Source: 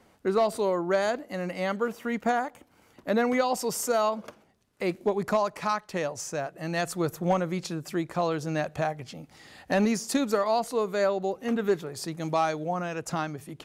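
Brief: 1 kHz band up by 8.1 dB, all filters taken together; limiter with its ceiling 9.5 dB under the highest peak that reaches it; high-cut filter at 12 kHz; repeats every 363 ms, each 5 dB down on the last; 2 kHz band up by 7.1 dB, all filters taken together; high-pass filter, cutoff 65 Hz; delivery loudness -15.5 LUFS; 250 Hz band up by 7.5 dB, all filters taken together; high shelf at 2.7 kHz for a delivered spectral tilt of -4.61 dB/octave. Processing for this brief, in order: high-pass 65 Hz; low-pass 12 kHz; peaking EQ 250 Hz +9 dB; peaking EQ 1 kHz +8.5 dB; peaking EQ 2 kHz +3 dB; treble shelf 2.7 kHz +7 dB; peak limiter -15 dBFS; feedback delay 363 ms, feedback 56%, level -5 dB; trim +9 dB

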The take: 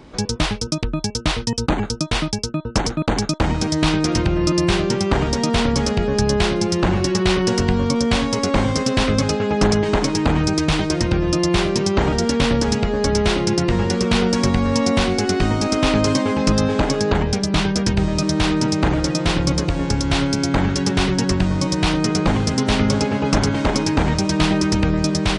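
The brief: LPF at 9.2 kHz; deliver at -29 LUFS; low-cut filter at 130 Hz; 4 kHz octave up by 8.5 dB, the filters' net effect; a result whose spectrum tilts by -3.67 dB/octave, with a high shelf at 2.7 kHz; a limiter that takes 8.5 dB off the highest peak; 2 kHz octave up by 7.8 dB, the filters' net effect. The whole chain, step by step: high-pass 130 Hz; low-pass 9.2 kHz; peaking EQ 2 kHz +6.5 dB; treble shelf 2.7 kHz +4 dB; peaking EQ 4 kHz +6 dB; trim -10.5 dB; peak limiter -18 dBFS

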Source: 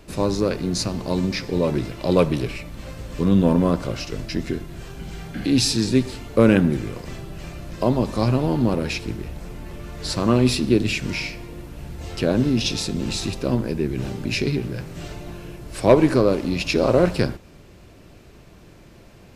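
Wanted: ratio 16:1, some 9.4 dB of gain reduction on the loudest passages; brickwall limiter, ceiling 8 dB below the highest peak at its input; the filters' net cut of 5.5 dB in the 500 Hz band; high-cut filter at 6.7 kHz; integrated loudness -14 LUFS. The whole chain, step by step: low-pass 6.7 kHz; peaking EQ 500 Hz -7 dB; compression 16:1, threshold -22 dBFS; trim +17 dB; peak limiter -2 dBFS

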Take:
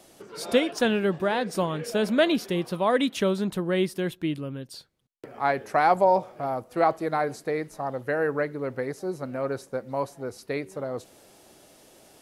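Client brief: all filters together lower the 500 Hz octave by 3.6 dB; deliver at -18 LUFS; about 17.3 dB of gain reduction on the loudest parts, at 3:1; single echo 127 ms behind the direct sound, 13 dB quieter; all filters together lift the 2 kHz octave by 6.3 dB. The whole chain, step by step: peaking EQ 500 Hz -5 dB; peaking EQ 2 kHz +8.5 dB; compression 3:1, threshold -41 dBFS; delay 127 ms -13 dB; trim +22.5 dB

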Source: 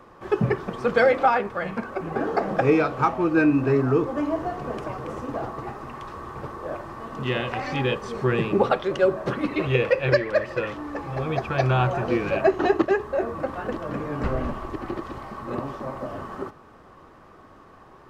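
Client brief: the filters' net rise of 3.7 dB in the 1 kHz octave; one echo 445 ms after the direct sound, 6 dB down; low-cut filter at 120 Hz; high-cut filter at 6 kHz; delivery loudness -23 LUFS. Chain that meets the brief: high-pass 120 Hz; low-pass 6 kHz; peaking EQ 1 kHz +5 dB; delay 445 ms -6 dB

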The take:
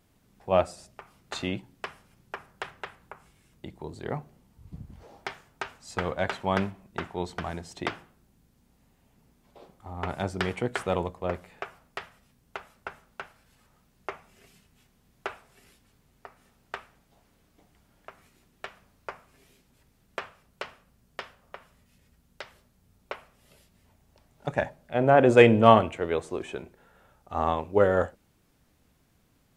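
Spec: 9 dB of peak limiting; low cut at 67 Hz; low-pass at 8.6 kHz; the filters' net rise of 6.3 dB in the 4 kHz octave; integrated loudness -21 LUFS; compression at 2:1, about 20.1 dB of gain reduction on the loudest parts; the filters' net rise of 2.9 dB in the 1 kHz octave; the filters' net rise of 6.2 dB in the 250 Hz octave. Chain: high-pass 67 Hz; low-pass 8.6 kHz; peaking EQ 250 Hz +7.5 dB; peaking EQ 1 kHz +3 dB; peaking EQ 4 kHz +8.5 dB; compression 2:1, threshold -45 dBFS; trim +24 dB; peak limiter -4 dBFS

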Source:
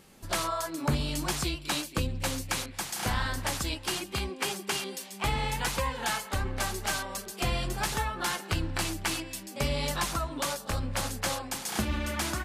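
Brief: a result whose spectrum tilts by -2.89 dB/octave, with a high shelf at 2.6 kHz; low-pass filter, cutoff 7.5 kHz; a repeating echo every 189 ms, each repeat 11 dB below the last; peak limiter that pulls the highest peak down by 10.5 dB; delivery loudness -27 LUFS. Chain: low-pass 7.5 kHz; treble shelf 2.6 kHz +5.5 dB; peak limiter -25 dBFS; feedback delay 189 ms, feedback 28%, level -11 dB; trim +7 dB

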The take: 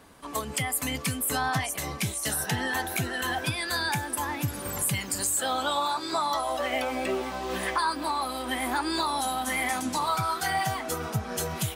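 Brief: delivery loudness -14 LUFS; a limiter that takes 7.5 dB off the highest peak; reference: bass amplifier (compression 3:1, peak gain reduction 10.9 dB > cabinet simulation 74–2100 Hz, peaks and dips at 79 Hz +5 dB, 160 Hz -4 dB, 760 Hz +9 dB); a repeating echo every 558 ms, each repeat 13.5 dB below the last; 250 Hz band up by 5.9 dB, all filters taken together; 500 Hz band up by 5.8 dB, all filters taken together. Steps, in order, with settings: peaking EQ 250 Hz +6.5 dB; peaking EQ 500 Hz +3.5 dB; peak limiter -21 dBFS; feedback delay 558 ms, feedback 21%, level -13.5 dB; compression 3:1, threshold -39 dBFS; cabinet simulation 74–2100 Hz, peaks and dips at 79 Hz +5 dB, 160 Hz -4 dB, 760 Hz +9 dB; trim +23 dB

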